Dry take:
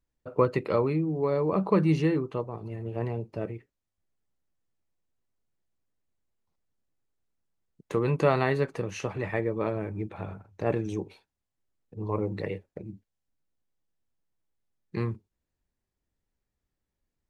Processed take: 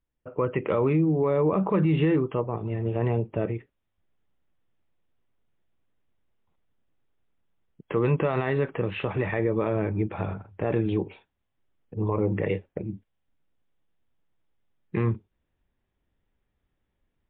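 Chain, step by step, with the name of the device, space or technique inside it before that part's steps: low-bitrate web radio (AGC gain up to 9 dB; limiter -13.5 dBFS, peak gain reduction 11 dB; gain -1 dB; MP3 40 kbps 8000 Hz)

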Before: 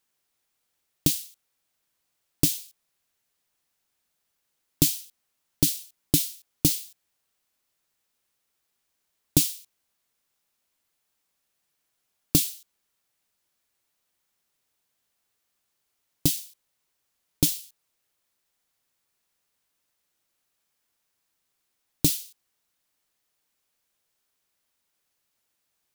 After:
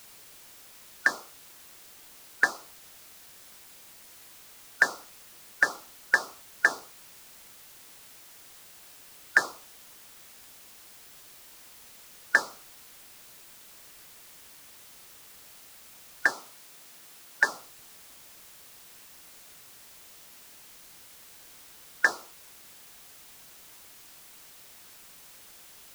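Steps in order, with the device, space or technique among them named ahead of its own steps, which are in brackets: split-band scrambled radio (four-band scrambler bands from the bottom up 4123; BPF 360–3100 Hz; white noise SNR 15 dB); 16.28–17.43 HPF 110 Hz 12 dB/oct; gain +2 dB

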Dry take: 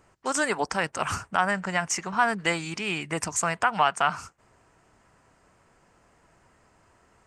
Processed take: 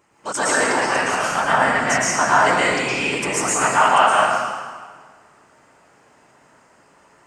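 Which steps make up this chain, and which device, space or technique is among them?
whispering ghost (whisperiser; HPF 230 Hz 6 dB/oct; reverb RT60 1.6 s, pre-delay 0.106 s, DRR -7.5 dB); gain +1 dB

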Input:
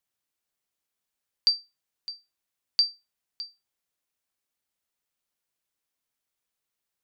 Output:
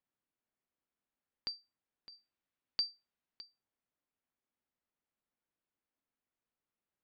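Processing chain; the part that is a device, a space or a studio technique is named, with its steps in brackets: phone in a pocket (LPF 3100 Hz 12 dB/oct; bell 250 Hz +5 dB 0.77 oct; high shelf 2500 Hz -10 dB); 2.12–3.41 high shelf 3100 Hz +9 dB; gain -2 dB

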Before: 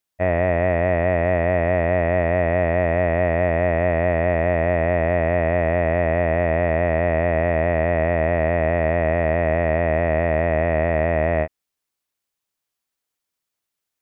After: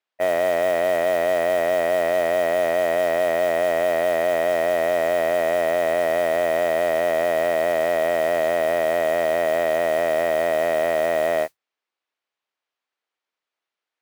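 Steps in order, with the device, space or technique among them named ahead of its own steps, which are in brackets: carbon microphone (BPF 400–3200 Hz; soft clip -14.5 dBFS, distortion -16 dB; modulation noise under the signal 22 dB); gain +3 dB

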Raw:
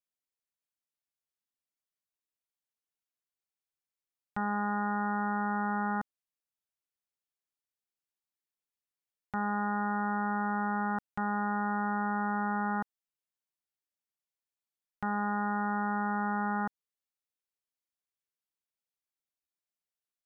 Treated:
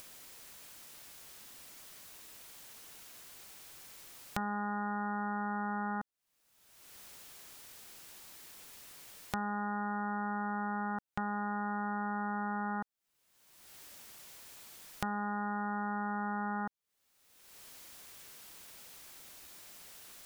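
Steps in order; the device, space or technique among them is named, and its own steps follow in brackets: upward and downward compression (upward compressor, threshold -36 dBFS; compressor 4:1, threshold -43 dBFS, peak gain reduction 12.5 dB); gain +8 dB

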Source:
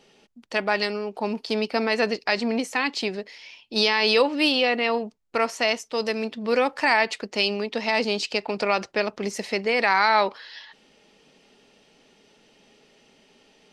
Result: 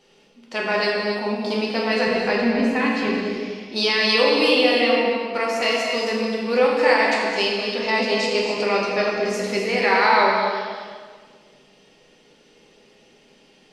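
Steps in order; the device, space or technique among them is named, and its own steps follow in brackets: 2.07–3.08 tone controls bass +9 dB, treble -12 dB; stairwell (reverb RT60 1.8 s, pre-delay 3 ms, DRR -3.5 dB); non-linear reverb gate 0.3 s rising, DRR 6 dB; gain -2.5 dB

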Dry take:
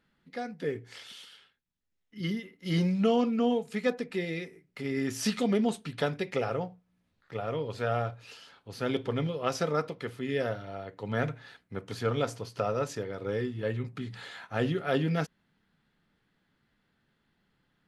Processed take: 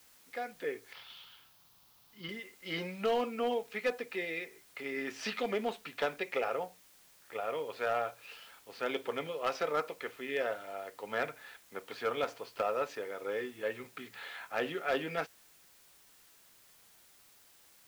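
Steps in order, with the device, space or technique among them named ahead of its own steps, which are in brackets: drive-through speaker (BPF 490–3400 Hz; bell 2400 Hz +4 dB 0.31 oct; hard clip -24 dBFS, distortion -19 dB; white noise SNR 24 dB); 0.93–2.29 graphic EQ 125/250/500/1000/2000/4000/8000 Hz +8/-3/-5/+5/-8/+3/-9 dB

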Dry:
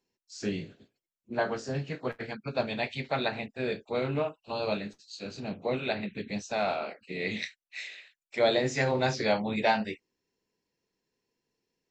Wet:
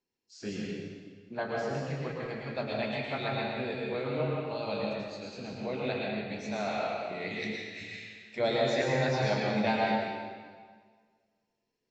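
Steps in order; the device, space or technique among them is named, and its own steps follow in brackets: stairwell (reverb RT60 1.7 s, pre-delay 0.101 s, DRR -2.5 dB); LPF 6800 Hz 12 dB/oct; 7.81–8.56 low shelf 210 Hz +9.5 dB; gain -6 dB

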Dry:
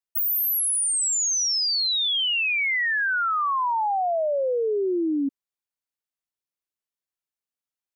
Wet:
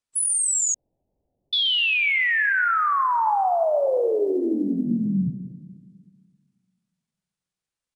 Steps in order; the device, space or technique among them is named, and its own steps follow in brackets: monster voice (pitch shift -7.5 st; formant shift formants -5 st; low shelf 160 Hz +9 dB; reverb RT60 1.7 s, pre-delay 21 ms, DRR 8.5 dB); 0.74–1.53 steep low-pass 750 Hz 48 dB/oct; gain +2 dB

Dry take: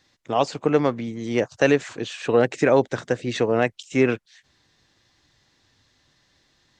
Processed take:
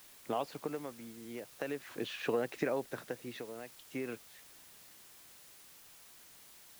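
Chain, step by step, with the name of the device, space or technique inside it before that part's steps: medium wave at night (BPF 150–4100 Hz; compressor, threshold -24 dBFS, peak gain reduction 11.5 dB; tremolo 0.42 Hz, depth 76%; whine 10000 Hz -64 dBFS; white noise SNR 16 dB); gain -5.5 dB

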